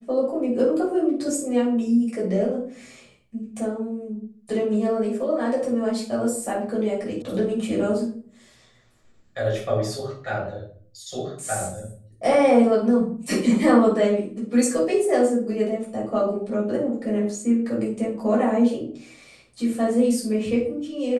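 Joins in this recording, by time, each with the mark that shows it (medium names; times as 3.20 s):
7.22 s: sound stops dead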